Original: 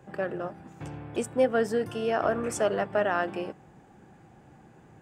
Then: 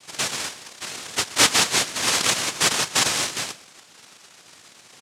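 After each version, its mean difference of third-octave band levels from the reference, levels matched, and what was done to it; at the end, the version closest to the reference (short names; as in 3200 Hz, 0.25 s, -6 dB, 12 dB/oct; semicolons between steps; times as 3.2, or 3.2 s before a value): 13.5 dB: Wiener smoothing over 25 samples; noise vocoder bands 1; on a send: echo 0.124 s -19.5 dB; on the sum: gain +5.5 dB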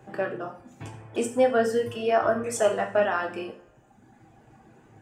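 3.5 dB: reverb removal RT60 1.4 s; bell 150 Hz -5 dB 0.38 oct; two-slope reverb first 0.42 s, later 1.9 s, from -27 dB, DRR 1.5 dB; gain +1.5 dB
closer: second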